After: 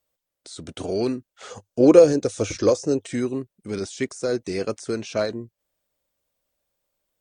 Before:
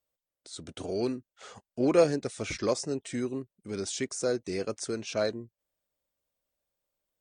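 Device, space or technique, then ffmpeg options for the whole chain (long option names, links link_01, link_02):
de-esser from a sidechain: -filter_complex "[0:a]asplit=2[link_01][link_02];[link_02]highpass=frequency=4200:width=0.5412,highpass=frequency=4200:width=1.3066,apad=whole_len=317779[link_03];[link_01][link_03]sidechaincompress=threshold=-43dB:ratio=10:attack=2.3:release=48,asettb=1/sr,asplit=3[link_04][link_05][link_06];[link_04]atrim=end=1.504[link_07];[link_05]atrim=start=1.5:end=3.06,asetpts=PTS-STARTPTS,afade=type=in:duration=0.004:curve=qsin,afade=type=out:start_time=1.556:duration=0.004:curve=qsin,equalizer=frequency=100:width_type=o:width=0.33:gain=6,equalizer=frequency=315:width_type=o:width=0.33:gain=6,equalizer=frequency=500:width_type=o:width=0.33:gain=9,equalizer=frequency=2000:width_type=o:width=0.33:gain=-6,equalizer=frequency=6300:width_type=o:width=0.33:gain=7[link_08];[link_06]atrim=start=3.056[link_09];[link_07][link_08]acrossfade=duration=0.004:curve1=hsin:curve2=qsin[link_10];[link_10][link_09]acrossfade=duration=0.004:curve1=qsin:curve2=hsin,volume=7dB"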